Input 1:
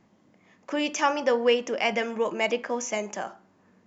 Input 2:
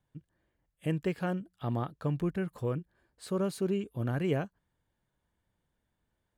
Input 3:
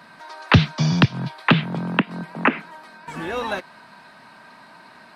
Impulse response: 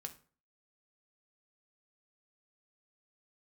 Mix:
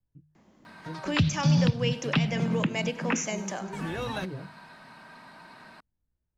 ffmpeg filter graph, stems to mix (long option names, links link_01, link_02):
-filter_complex "[0:a]adelay=350,volume=2dB,asplit=2[link_01][link_02];[link_02]volume=-18dB[link_03];[1:a]aemphasis=mode=reproduction:type=riaa,bandreject=frequency=50:width_type=h:width=6,bandreject=frequency=100:width_type=h:width=6,bandreject=frequency=150:width_type=h:width=6,flanger=delay=16:depth=6.2:speed=2.1,volume=-10.5dB[link_04];[2:a]lowshelf=frequency=130:gain=6.5,adelay=650,volume=-5.5dB,asplit=2[link_05][link_06];[link_06]volume=-5.5dB[link_07];[3:a]atrim=start_sample=2205[link_08];[link_07][link_08]afir=irnorm=-1:irlink=0[link_09];[link_03]aecho=0:1:99|198|297|396|495|594|693|792|891:1|0.59|0.348|0.205|0.121|0.0715|0.0422|0.0249|0.0147[link_10];[link_01][link_04][link_05][link_09][link_10]amix=inputs=5:normalize=0,acrossover=split=240|3000[link_11][link_12][link_13];[link_12]acompressor=threshold=-37dB:ratio=2[link_14];[link_11][link_14][link_13]amix=inputs=3:normalize=0,alimiter=limit=-13.5dB:level=0:latency=1:release=225"